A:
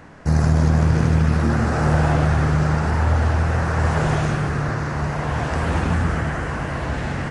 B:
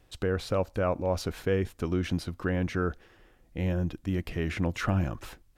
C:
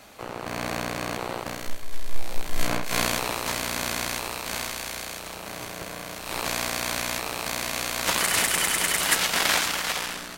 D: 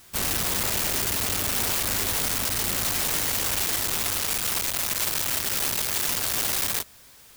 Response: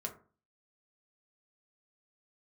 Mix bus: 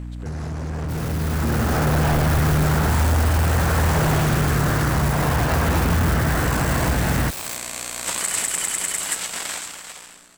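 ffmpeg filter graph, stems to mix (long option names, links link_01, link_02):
-filter_complex "[0:a]aeval=exprs='sgn(val(0))*max(abs(val(0))-0.0075,0)':channel_layout=same,aeval=exprs='val(0)+0.0355*(sin(2*PI*60*n/s)+sin(2*PI*2*60*n/s)/2+sin(2*PI*3*60*n/s)/3+sin(2*PI*4*60*n/s)/4+sin(2*PI*5*60*n/s)/5)':channel_layout=same,volume=0dB[link_01];[1:a]volume=-7.5dB[link_02];[2:a]equalizer=frequency=7900:width=3.5:gain=14.5,volume=-15.5dB[link_03];[3:a]adelay=750,volume=-18.5dB[link_04];[link_01][link_02][link_03]amix=inputs=3:normalize=0,volume=18dB,asoftclip=hard,volume=-18dB,acompressor=threshold=-28dB:ratio=6,volume=0dB[link_05];[link_04][link_05]amix=inputs=2:normalize=0,dynaudnorm=framelen=300:gausssize=9:maxgain=11dB"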